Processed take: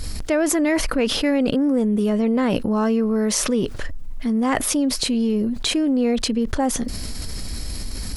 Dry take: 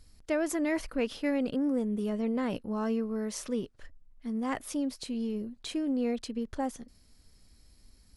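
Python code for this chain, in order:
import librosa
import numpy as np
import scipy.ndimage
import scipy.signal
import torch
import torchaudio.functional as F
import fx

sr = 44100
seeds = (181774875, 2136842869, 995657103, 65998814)

y = fx.env_flatten(x, sr, amount_pct=70)
y = y * librosa.db_to_amplitude(8.5)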